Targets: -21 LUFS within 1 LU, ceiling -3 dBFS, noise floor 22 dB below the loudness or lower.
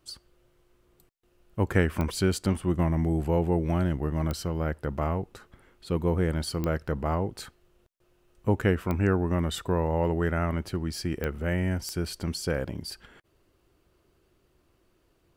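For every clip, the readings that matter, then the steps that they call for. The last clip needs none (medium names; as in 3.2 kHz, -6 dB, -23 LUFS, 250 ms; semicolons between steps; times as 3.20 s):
clicks found 6; loudness -28.5 LUFS; peak level -9.0 dBFS; loudness target -21.0 LUFS
-> de-click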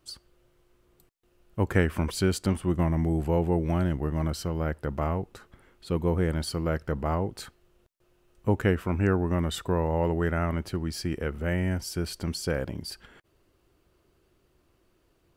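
clicks found 0; loudness -28.5 LUFS; peak level -9.0 dBFS; loudness target -21.0 LUFS
-> trim +7.5 dB; peak limiter -3 dBFS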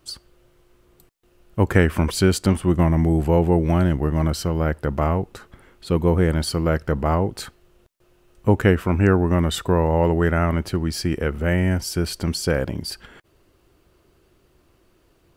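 loudness -21.0 LUFS; peak level -3.0 dBFS; noise floor -61 dBFS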